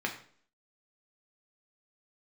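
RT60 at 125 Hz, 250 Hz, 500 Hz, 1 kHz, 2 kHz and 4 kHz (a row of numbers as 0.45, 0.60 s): 0.50, 0.60, 0.55, 0.50, 0.45, 0.45 s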